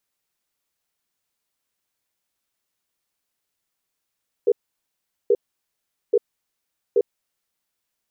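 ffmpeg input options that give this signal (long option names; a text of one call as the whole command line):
ffmpeg -f lavfi -i "aevalsrc='0.158*(sin(2*PI*409*t)+sin(2*PI*476*t))*clip(min(mod(t,0.83),0.05-mod(t,0.83))/0.005,0,1)':duration=3.25:sample_rate=44100" out.wav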